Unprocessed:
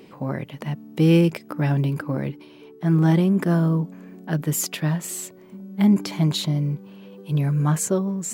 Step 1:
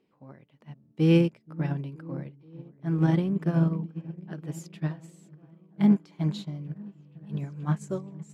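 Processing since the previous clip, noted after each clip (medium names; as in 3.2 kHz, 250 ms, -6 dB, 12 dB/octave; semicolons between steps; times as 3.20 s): distance through air 56 m; on a send: delay with an opening low-pass 477 ms, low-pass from 200 Hz, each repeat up 1 oct, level -6 dB; on the sum: upward expansion 2.5:1, over -28 dBFS; trim -2 dB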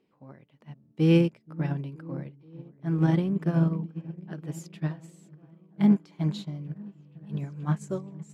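no audible change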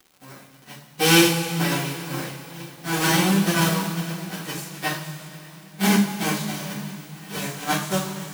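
formants flattened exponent 0.3; two-slope reverb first 0.4 s, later 3 s, from -15 dB, DRR -8.5 dB; crackle 150 per s -38 dBFS; trim -2.5 dB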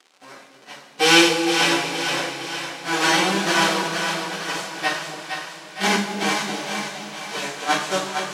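band-pass 380–6500 Hz; two-band feedback delay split 560 Hz, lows 268 ms, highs 462 ms, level -6 dB; trim +4 dB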